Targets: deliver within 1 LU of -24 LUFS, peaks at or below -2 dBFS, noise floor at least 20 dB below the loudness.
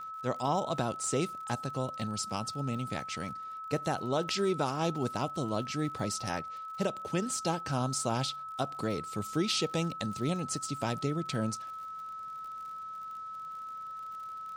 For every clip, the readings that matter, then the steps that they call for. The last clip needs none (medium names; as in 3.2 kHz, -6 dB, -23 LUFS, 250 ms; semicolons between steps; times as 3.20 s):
tick rate 53 per s; steady tone 1.3 kHz; tone level -39 dBFS; loudness -34.0 LUFS; peak level -18.0 dBFS; loudness target -24.0 LUFS
-> de-click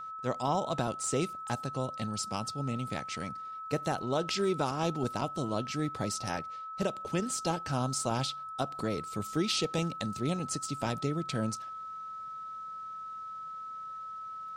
tick rate 0.21 per s; steady tone 1.3 kHz; tone level -39 dBFS
-> band-stop 1.3 kHz, Q 30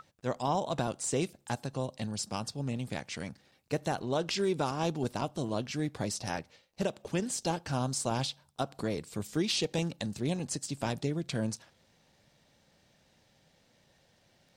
steady tone not found; loudness -34.0 LUFS; peak level -19.0 dBFS; loudness target -24.0 LUFS
-> trim +10 dB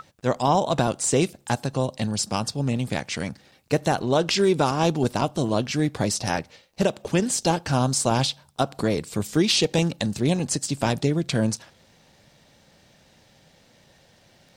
loudness -24.0 LUFS; peak level -9.0 dBFS; noise floor -58 dBFS